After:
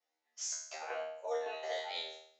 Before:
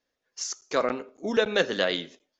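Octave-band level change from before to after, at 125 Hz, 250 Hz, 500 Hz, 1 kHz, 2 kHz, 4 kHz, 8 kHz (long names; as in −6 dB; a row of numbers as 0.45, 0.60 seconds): below −40 dB, below −30 dB, −13.0 dB, −8.5 dB, −15.5 dB, −11.5 dB, can't be measured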